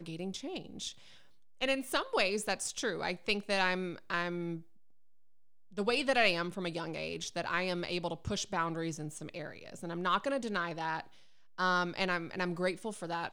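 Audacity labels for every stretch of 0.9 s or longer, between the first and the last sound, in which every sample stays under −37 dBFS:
4.570000	5.780000	silence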